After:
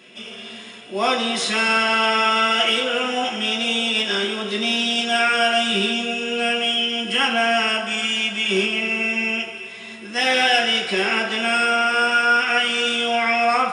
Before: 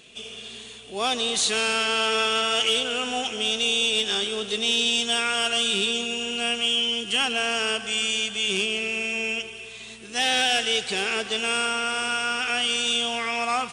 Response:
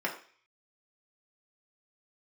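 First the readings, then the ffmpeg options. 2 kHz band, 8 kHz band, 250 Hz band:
+6.5 dB, -4.0 dB, +8.0 dB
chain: -filter_complex "[1:a]atrim=start_sample=2205[a];[0:a][a]afir=irnorm=-1:irlink=0"

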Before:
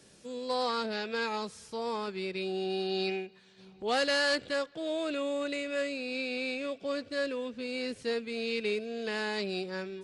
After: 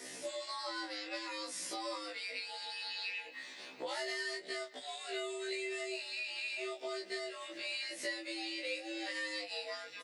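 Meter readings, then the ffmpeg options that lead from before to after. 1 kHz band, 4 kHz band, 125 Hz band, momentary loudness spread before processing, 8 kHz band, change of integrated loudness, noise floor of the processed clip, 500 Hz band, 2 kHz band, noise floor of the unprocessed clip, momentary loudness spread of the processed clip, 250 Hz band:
-8.5 dB, -3.5 dB, n/a, 7 LU, +1.5 dB, -7.0 dB, -51 dBFS, -10.5 dB, -5.0 dB, -58 dBFS, 4 LU, -12.0 dB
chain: -filter_complex "[0:a]equalizer=f=1.9k:w=4.8:g=11.5,acrossover=split=520|3900[a][b][c];[a]acompressor=threshold=-48dB:ratio=4[d];[b]acompressor=threshold=-44dB:ratio=4[e];[c]acompressor=threshold=-49dB:ratio=4[f];[d][e][f]amix=inputs=3:normalize=0,asplit=2[g][h];[h]adelay=25,volume=-3dB[i];[g][i]amix=inputs=2:normalize=0,afreqshift=100,highpass=f=180:p=1,acompressor=threshold=-48dB:ratio=3,highshelf=f=6.2k:g=6,afftfilt=real='re*1.73*eq(mod(b,3),0)':imag='im*1.73*eq(mod(b,3),0)':win_size=2048:overlap=0.75,volume=10dB"

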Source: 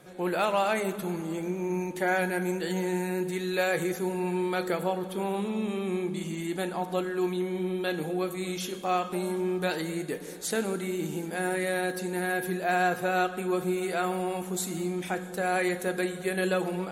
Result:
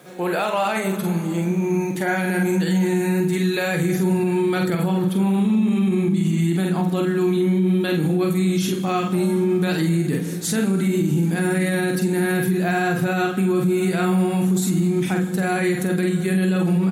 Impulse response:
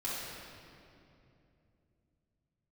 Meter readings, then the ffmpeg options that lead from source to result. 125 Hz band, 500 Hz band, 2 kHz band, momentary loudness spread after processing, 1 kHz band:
+15.5 dB, +6.0 dB, +5.0 dB, 3 LU, +3.0 dB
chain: -filter_complex "[0:a]acrusher=bits=10:mix=0:aa=0.000001,asubboost=boost=11:cutoff=160,highpass=f=120:w=0.5412,highpass=f=120:w=1.3066,asplit=2[a][b];[b]adelay=47,volume=-4dB[c];[a][c]amix=inputs=2:normalize=0,alimiter=limit=-19.5dB:level=0:latency=1:release=59,volume=7dB"

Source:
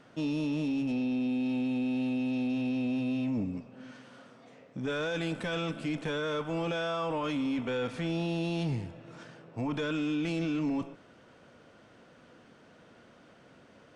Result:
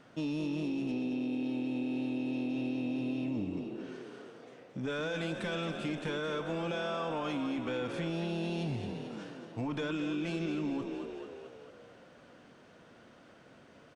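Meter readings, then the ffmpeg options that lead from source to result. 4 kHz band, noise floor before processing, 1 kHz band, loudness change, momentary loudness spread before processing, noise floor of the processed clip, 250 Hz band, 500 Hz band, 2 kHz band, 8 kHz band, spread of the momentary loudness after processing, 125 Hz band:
-2.5 dB, -58 dBFS, -2.5 dB, -3.5 dB, 13 LU, -58 dBFS, -3.5 dB, -2.0 dB, -2.5 dB, n/a, 11 LU, -3.5 dB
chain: -filter_complex "[0:a]asplit=8[a][b][c][d][e][f][g][h];[b]adelay=221,afreqshift=40,volume=-9dB[i];[c]adelay=442,afreqshift=80,volume=-13.6dB[j];[d]adelay=663,afreqshift=120,volume=-18.2dB[k];[e]adelay=884,afreqshift=160,volume=-22.7dB[l];[f]adelay=1105,afreqshift=200,volume=-27.3dB[m];[g]adelay=1326,afreqshift=240,volume=-31.9dB[n];[h]adelay=1547,afreqshift=280,volume=-36.5dB[o];[a][i][j][k][l][m][n][o]amix=inputs=8:normalize=0,acompressor=threshold=-30dB:ratio=6,volume=-1dB"

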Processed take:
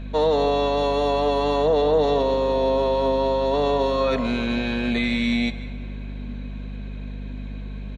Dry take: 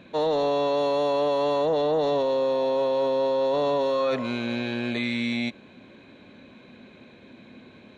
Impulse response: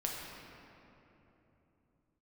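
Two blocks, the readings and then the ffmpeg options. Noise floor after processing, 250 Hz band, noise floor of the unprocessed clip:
-32 dBFS, +5.0 dB, -51 dBFS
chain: -filter_complex "[0:a]aeval=exprs='val(0)+0.0178*(sin(2*PI*50*n/s)+sin(2*PI*2*50*n/s)/2+sin(2*PI*3*50*n/s)/3+sin(2*PI*4*50*n/s)/4+sin(2*PI*5*50*n/s)/5)':c=same,aecho=1:1:4.4:0.35,asplit=2[a][b];[1:a]atrim=start_sample=2205,adelay=149[c];[b][c]afir=irnorm=-1:irlink=0,volume=-17dB[d];[a][d]amix=inputs=2:normalize=0,volume=3dB"

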